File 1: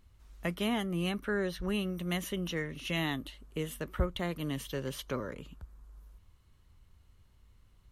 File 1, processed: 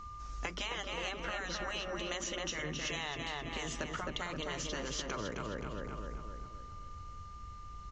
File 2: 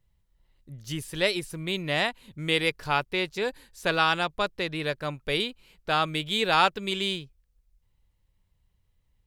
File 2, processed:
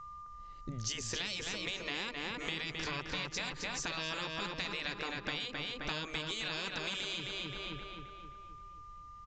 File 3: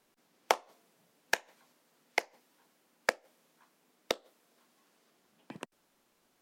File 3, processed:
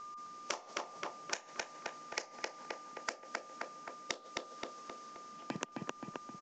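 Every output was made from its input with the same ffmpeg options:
ffmpeg -i in.wav -filter_complex "[0:a]alimiter=limit=-20.5dB:level=0:latency=1:release=18,aexciter=amount=2.7:drive=3.7:freq=5000,aeval=exprs='val(0)+0.00178*sin(2*PI*1200*n/s)':channel_layout=same,afftfilt=real='re*lt(hypot(re,im),0.0891)':imag='im*lt(hypot(re,im),0.0891)':win_size=1024:overlap=0.75,aresample=16000,aresample=44100,asplit=2[link_01][link_02];[link_02]adelay=263,lowpass=frequency=3200:poles=1,volume=-3dB,asplit=2[link_03][link_04];[link_04]adelay=263,lowpass=frequency=3200:poles=1,volume=0.5,asplit=2[link_05][link_06];[link_06]adelay=263,lowpass=frequency=3200:poles=1,volume=0.5,asplit=2[link_07][link_08];[link_08]adelay=263,lowpass=frequency=3200:poles=1,volume=0.5,asplit=2[link_09][link_10];[link_10]adelay=263,lowpass=frequency=3200:poles=1,volume=0.5,asplit=2[link_11][link_12];[link_12]adelay=263,lowpass=frequency=3200:poles=1,volume=0.5,asplit=2[link_13][link_14];[link_14]adelay=263,lowpass=frequency=3200:poles=1,volume=0.5[link_15];[link_01][link_03][link_05][link_07][link_09][link_11][link_13][link_15]amix=inputs=8:normalize=0,acompressor=threshold=-45dB:ratio=6,volume=9.5dB" out.wav

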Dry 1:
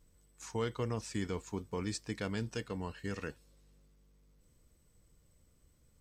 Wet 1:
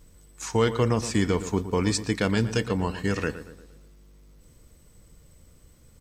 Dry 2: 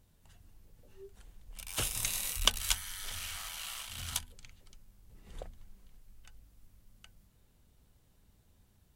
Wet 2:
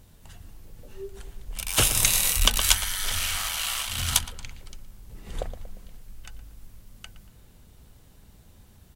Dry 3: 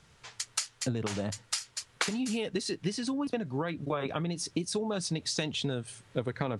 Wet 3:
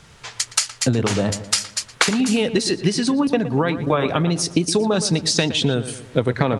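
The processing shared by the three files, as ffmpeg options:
ffmpeg -i in.wav -filter_complex "[0:a]asplit=2[link_01][link_02];[link_02]adelay=117,lowpass=frequency=2200:poles=1,volume=-12dB,asplit=2[link_03][link_04];[link_04]adelay=117,lowpass=frequency=2200:poles=1,volume=0.49,asplit=2[link_05][link_06];[link_06]adelay=117,lowpass=frequency=2200:poles=1,volume=0.49,asplit=2[link_07][link_08];[link_08]adelay=117,lowpass=frequency=2200:poles=1,volume=0.49,asplit=2[link_09][link_10];[link_10]adelay=117,lowpass=frequency=2200:poles=1,volume=0.49[link_11];[link_03][link_05][link_07][link_09][link_11]amix=inputs=5:normalize=0[link_12];[link_01][link_12]amix=inputs=2:normalize=0,alimiter=level_in=14dB:limit=-1dB:release=50:level=0:latency=1,volume=-1dB" out.wav

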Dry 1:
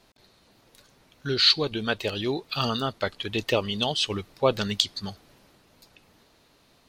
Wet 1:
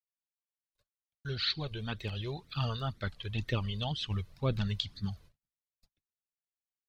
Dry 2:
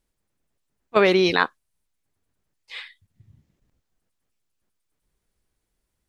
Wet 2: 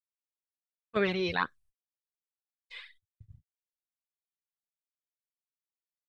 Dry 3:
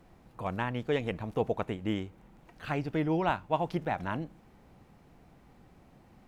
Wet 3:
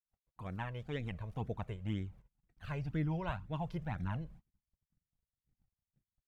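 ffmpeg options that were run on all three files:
ffmpeg -i in.wav -filter_complex "[0:a]flanger=delay=0.5:depth=1.5:regen=2:speed=2:shape=sinusoidal,agate=range=-56dB:threshold=-54dB:ratio=16:detection=peak,acrossover=split=4500[link_01][link_02];[link_02]acompressor=threshold=-52dB:ratio=4:attack=1:release=60[link_03];[link_01][link_03]amix=inputs=2:normalize=0,asubboost=boost=5:cutoff=180,volume=-6.5dB" out.wav

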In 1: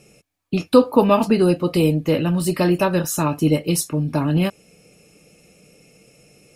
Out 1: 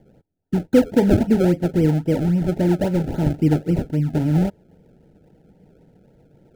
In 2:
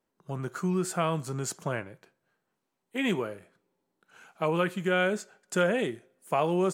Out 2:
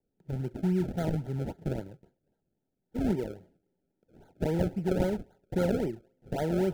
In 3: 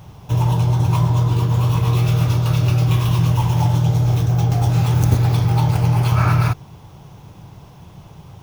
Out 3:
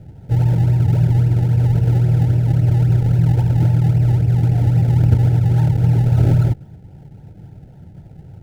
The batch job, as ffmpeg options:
ffmpeg -i in.wav -af "acrusher=samples=32:mix=1:aa=0.000001:lfo=1:lforange=32:lforate=3.7,asuperstop=centerf=1100:order=12:qfactor=3.3,tiltshelf=frequency=820:gain=9,volume=-6.5dB" out.wav

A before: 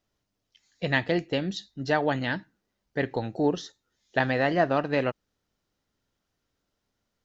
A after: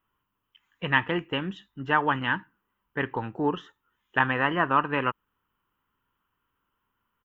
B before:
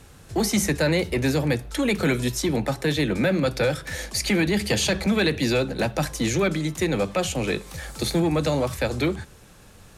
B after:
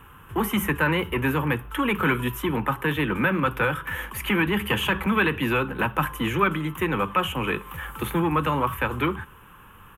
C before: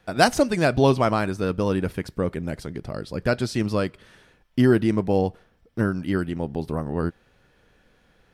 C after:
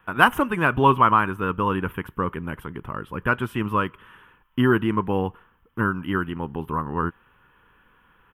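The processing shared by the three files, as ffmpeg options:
ffmpeg -i in.wav -af "firequalizer=gain_entry='entry(420,0);entry(660,-8);entry(990,15);entry(2100,1);entry(3000,7);entry(4300,-25);entry(13000,8)':delay=0.05:min_phase=1,volume=-2dB" out.wav

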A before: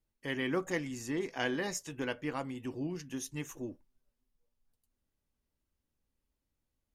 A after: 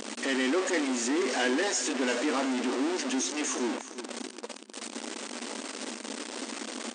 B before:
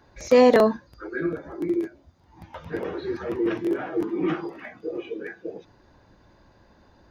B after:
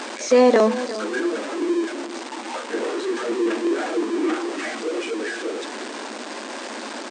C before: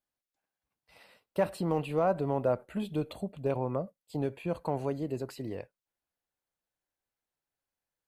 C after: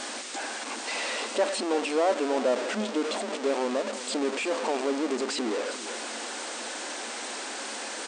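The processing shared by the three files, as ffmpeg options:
ffmpeg -i in.wav -af "aeval=exprs='val(0)+0.5*0.0562*sgn(val(0))':channel_layout=same,aecho=1:1:352|704|1056:0.2|0.0658|0.0217,afftfilt=real='re*between(b*sr/4096,210,9200)':imag='im*between(b*sr/4096,210,9200)':win_size=4096:overlap=0.75" out.wav

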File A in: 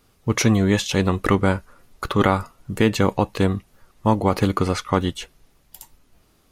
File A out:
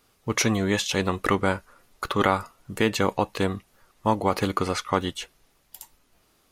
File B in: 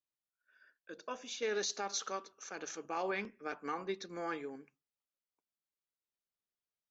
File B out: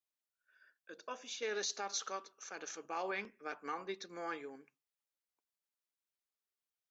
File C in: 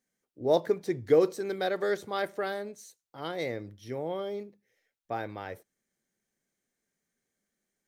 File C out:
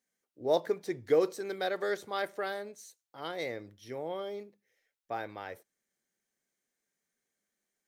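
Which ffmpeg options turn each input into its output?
ffmpeg -i in.wav -af "lowshelf=frequency=290:gain=-9,volume=-1dB" out.wav

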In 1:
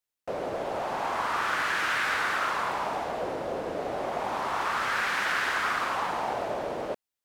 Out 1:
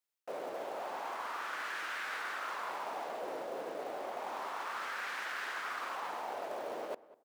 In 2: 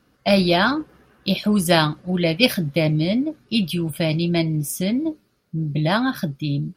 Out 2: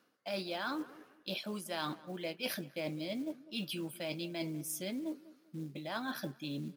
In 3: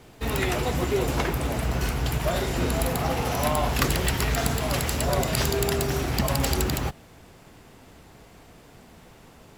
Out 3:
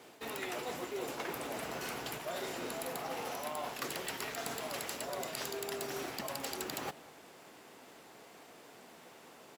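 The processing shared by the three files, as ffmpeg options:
ffmpeg -i in.wav -filter_complex "[0:a]highpass=320,areverse,acompressor=threshold=-35dB:ratio=5,areverse,acrusher=bits=6:mode=log:mix=0:aa=0.000001,asplit=2[link_01][link_02];[link_02]adelay=197,lowpass=frequency=1600:poles=1,volume=-18dB,asplit=2[link_03][link_04];[link_04]adelay=197,lowpass=frequency=1600:poles=1,volume=0.3,asplit=2[link_05][link_06];[link_06]adelay=197,lowpass=frequency=1600:poles=1,volume=0.3[link_07];[link_01][link_03][link_05][link_07]amix=inputs=4:normalize=0,volume=-2.5dB" out.wav

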